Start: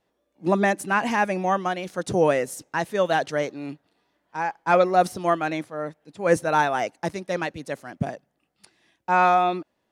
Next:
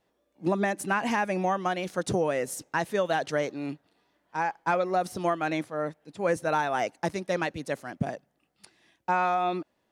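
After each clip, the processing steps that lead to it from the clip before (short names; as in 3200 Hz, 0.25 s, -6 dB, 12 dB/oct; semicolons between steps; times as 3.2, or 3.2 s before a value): compressor 10:1, threshold -22 dBFS, peak gain reduction 10 dB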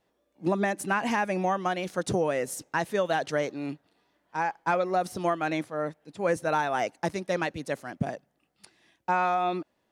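nothing audible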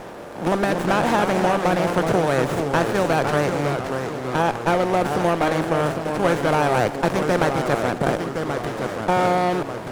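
per-bin compression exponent 0.4; echoes that change speed 0.172 s, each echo -2 st, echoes 3, each echo -6 dB; running maximum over 9 samples; gain +1 dB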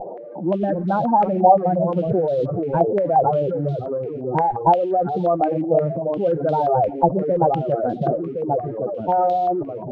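spectral contrast raised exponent 3.9; modulation noise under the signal 34 dB; stepped low-pass 5.7 Hz 790–3700 Hz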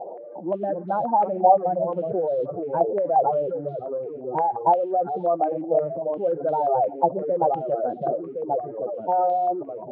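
band-pass 680 Hz, Q 0.89; gain -2.5 dB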